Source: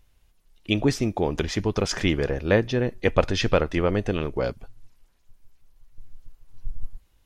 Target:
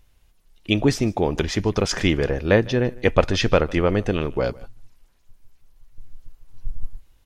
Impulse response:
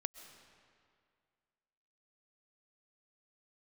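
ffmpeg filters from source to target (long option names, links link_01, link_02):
-af "aecho=1:1:153:0.0668,volume=3dB"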